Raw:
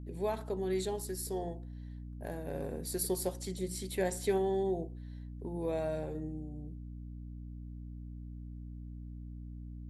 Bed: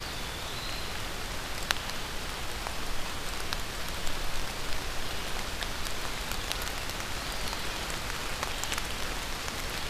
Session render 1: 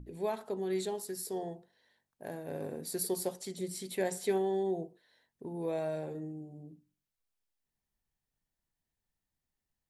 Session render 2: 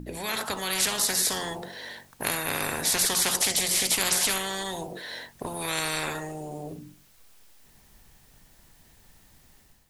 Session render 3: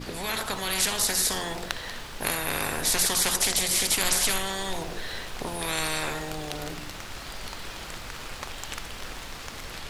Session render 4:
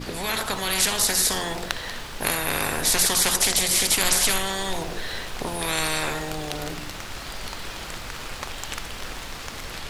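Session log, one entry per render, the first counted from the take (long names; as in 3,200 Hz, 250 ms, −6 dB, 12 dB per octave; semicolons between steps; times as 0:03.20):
mains-hum notches 60/120/180/240/300 Hz
automatic gain control gain up to 10 dB; every bin compressed towards the loudest bin 10 to 1
mix in bed −4 dB
level +3.5 dB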